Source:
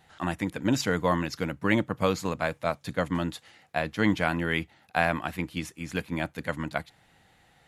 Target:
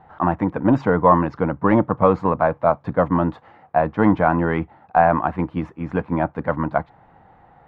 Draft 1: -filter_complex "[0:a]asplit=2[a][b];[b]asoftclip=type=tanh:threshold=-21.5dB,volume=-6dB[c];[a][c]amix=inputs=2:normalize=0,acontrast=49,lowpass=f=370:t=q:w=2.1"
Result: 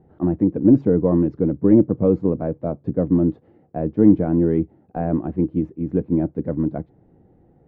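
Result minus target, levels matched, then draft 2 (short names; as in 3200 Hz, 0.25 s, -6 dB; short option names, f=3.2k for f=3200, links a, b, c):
1000 Hz band -17.5 dB
-filter_complex "[0:a]asplit=2[a][b];[b]asoftclip=type=tanh:threshold=-21.5dB,volume=-6dB[c];[a][c]amix=inputs=2:normalize=0,acontrast=49,lowpass=f=1k:t=q:w=2.1"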